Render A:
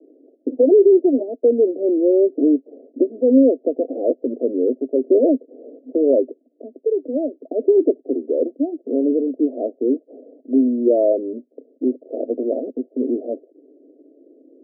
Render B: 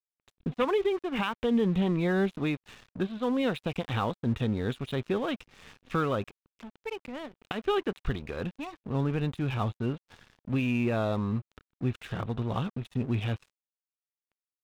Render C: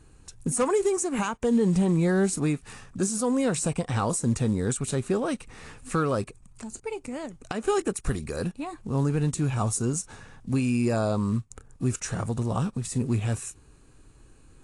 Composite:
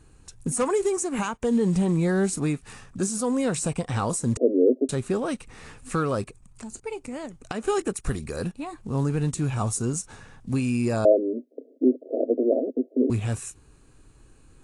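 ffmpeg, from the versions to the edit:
-filter_complex "[0:a]asplit=2[s0][s1];[2:a]asplit=3[s2][s3][s4];[s2]atrim=end=4.372[s5];[s0]atrim=start=4.368:end=4.892[s6];[s3]atrim=start=4.888:end=11.052[s7];[s1]atrim=start=11.048:end=13.102[s8];[s4]atrim=start=13.098[s9];[s5][s6]acrossfade=d=0.004:c1=hsin:c2=hsin[s10];[s10][s7]acrossfade=d=0.004:c1=hsin:c2=hsin[s11];[s11][s8]acrossfade=d=0.004:c1=hsin:c2=hsin[s12];[s12][s9]acrossfade=d=0.004:c1=hsin:c2=hsin"

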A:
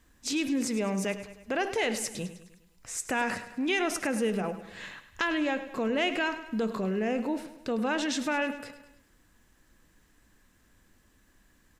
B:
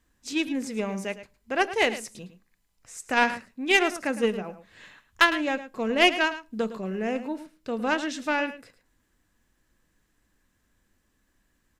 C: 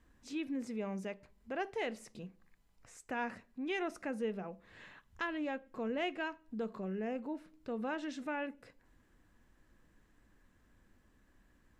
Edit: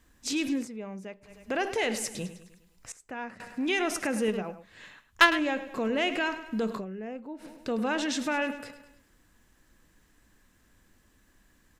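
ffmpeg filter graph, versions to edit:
-filter_complex "[2:a]asplit=3[s0][s1][s2];[0:a]asplit=5[s3][s4][s5][s6][s7];[s3]atrim=end=0.69[s8];[s0]atrim=start=0.53:end=1.37[s9];[s4]atrim=start=1.21:end=2.922[s10];[s1]atrim=start=2.918:end=3.402[s11];[s5]atrim=start=3.398:end=4.282[s12];[1:a]atrim=start=4.278:end=5.392[s13];[s6]atrim=start=5.388:end=6.85[s14];[s2]atrim=start=6.75:end=7.48[s15];[s7]atrim=start=7.38[s16];[s8][s9]acrossfade=d=0.16:c1=tri:c2=tri[s17];[s17][s10]acrossfade=d=0.16:c1=tri:c2=tri[s18];[s18][s11]acrossfade=d=0.004:c1=hsin:c2=hsin[s19];[s19][s12]acrossfade=d=0.004:c1=hsin:c2=hsin[s20];[s20][s13]acrossfade=d=0.004:c1=hsin:c2=hsin[s21];[s21][s14]acrossfade=d=0.004:c1=hsin:c2=hsin[s22];[s22][s15]acrossfade=d=0.1:c1=tri:c2=tri[s23];[s23][s16]acrossfade=d=0.1:c1=tri:c2=tri"

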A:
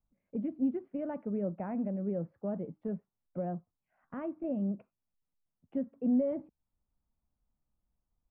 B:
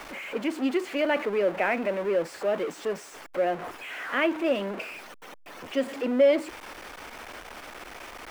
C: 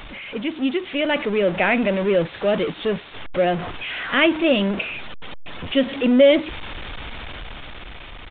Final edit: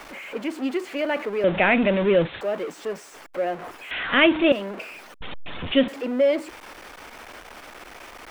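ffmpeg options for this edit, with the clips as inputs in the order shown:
-filter_complex "[2:a]asplit=3[s0][s1][s2];[1:a]asplit=4[s3][s4][s5][s6];[s3]atrim=end=1.442[s7];[s0]atrim=start=1.438:end=2.412[s8];[s4]atrim=start=2.408:end=3.912[s9];[s1]atrim=start=3.908:end=4.522[s10];[s5]atrim=start=4.518:end=5.212[s11];[s2]atrim=start=5.208:end=5.882[s12];[s6]atrim=start=5.878[s13];[s7][s8]acrossfade=d=0.004:c1=hsin:c2=hsin[s14];[s14][s9]acrossfade=d=0.004:c1=hsin:c2=hsin[s15];[s15][s10]acrossfade=d=0.004:c1=hsin:c2=hsin[s16];[s16][s11]acrossfade=d=0.004:c1=hsin:c2=hsin[s17];[s17][s12]acrossfade=d=0.004:c1=hsin:c2=hsin[s18];[s18][s13]acrossfade=d=0.004:c1=hsin:c2=hsin"

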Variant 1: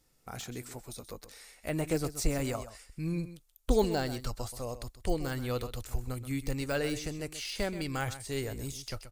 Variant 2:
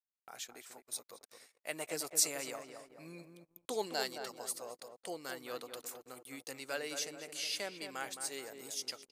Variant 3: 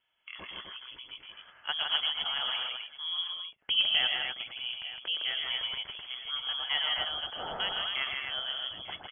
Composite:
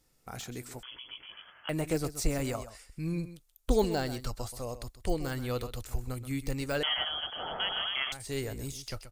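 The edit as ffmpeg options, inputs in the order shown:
-filter_complex "[2:a]asplit=2[s0][s1];[0:a]asplit=3[s2][s3][s4];[s2]atrim=end=0.832[s5];[s0]atrim=start=0.828:end=1.692[s6];[s3]atrim=start=1.688:end=6.832[s7];[s1]atrim=start=6.828:end=8.122[s8];[s4]atrim=start=8.118[s9];[s5][s6]acrossfade=d=0.004:c1=hsin:c2=hsin[s10];[s10][s7]acrossfade=d=0.004:c1=hsin:c2=hsin[s11];[s11][s8]acrossfade=d=0.004:c1=hsin:c2=hsin[s12];[s12][s9]acrossfade=d=0.004:c1=hsin:c2=hsin"

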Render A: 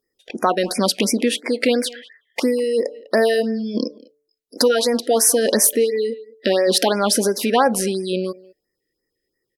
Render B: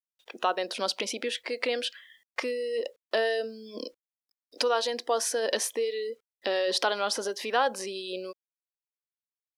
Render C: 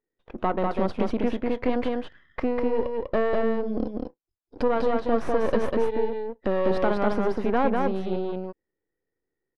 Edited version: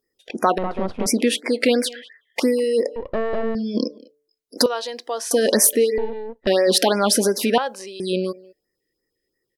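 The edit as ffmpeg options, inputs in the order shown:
-filter_complex "[2:a]asplit=3[s0][s1][s2];[1:a]asplit=2[s3][s4];[0:a]asplit=6[s5][s6][s7][s8][s9][s10];[s5]atrim=end=0.582[s11];[s0]atrim=start=0.578:end=1.062[s12];[s6]atrim=start=1.058:end=2.962[s13];[s1]atrim=start=2.958:end=3.552[s14];[s7]atrim=start=3.548:end=4.662[s15];[s3]atrim=start=4.658:end=5.312[s16];[s8]atrim=start=5.308:end=5.982[s17];[s2]atrim=start=5.978:end=6.472[s18];[s9]atrim=start=6.468:end=7.582[s19];[s4]atrim=start=7.578:end=8.002[s20];[s10]atrim=start=7.998[s21];[s11][s12]acrossfade=d=0.004:c1=hsin:c2=hsin[s22];[s22][s13]acrossfade=d=0.004:c1=hsin:c2=hsin[s23];[s23][s14]acrossfade=d=0.004:c1=hsin:c2=hsin[s24];[s24][s15]acrossfade=d=0.004:c1=hsin:c2=hsin[s25];[s25][s16]acrossfade=d=0.004:c1=hsin:c2=hsin[s26];[s26][s17]acrossfade=d=0.004:c1=hsin:c2=hsin[s27];[s27][s18]acrossfade=d=0.004:c1=hsin:c2=hsin[s28];[s28][s19]acrossfade=d=0.004:c1=hsin:c2=hsin[s29];[s29][s20]acrossfade=d=0.004:c1=hsin:c2=hsin[s30];[s30][s21]acrossfade=d=0.004:c1=hsin:c2=hsin"

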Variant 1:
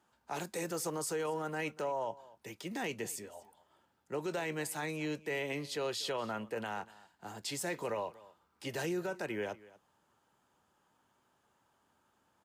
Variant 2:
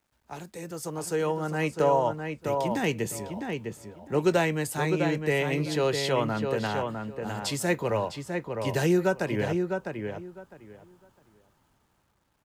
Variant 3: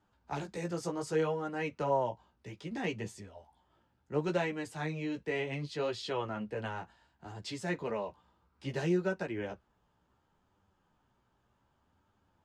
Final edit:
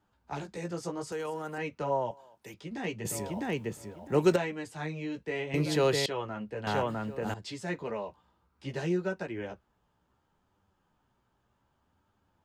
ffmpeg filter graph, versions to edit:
-filter_complex "[0:a]asplit=2[s0][s1];[1:a]asplit=3[s2][s3][s4];[2:a]asplit=6[s5][s6][s7][s8][s9][s10];[s5]atrim=end=1.122[s11];[s0]atrim=start=1.118:end=1.582[s12];[s6]atrim=start=1.578:end=2.112[s13];[s1]atrim=start=2.108:end=2.542[s14];[s7]atrim=start=2.538:end=3.052[s15];[s2]atrim=start=3.048:end=4.362[s16];[s8]atrim=start=4.358:end=5.542[s17];[s3]atrim=start=5.538:end=6.062[s18];[s9]atrim=start=6.058:end=6.672[s19];[s4]atrim=start=6.668:end=7.342[s20];[s10]atrim=start=7.338[s21];[s11][s12]acrossfade=d=0.004:c1=hsin:c2=hsin[s22];[s22][s13]acrossfade=d=0.004:c1=hsin:c2=hsin[s23];[s23][s14]acrossfade=d=0.004:c1=hsin:c2=hsin[s24];[s24][s15]acrossfade=d=0.004:c1=hsin:c2=hsin[s25];[s25][s16]acrossfade=d=0.004:c1=hsin:c2=hsin[s26];[s26][s17]acrossfade=d=0.004:c1=hsin:c2=hsin[s27];[s27][s18]acrossfade=d=0.004:c1=hsin:c2=hsin[s28];[s28][s19]acrossfade=d=0.004:c1=hsin:c2=hsin[s29];[s29][s20]acrossfade=d=0.004:c1=hsin:c2=hsin[s30];[s30][s21]acrossfade=d=0.004:c1=hsin:c2=hsin"

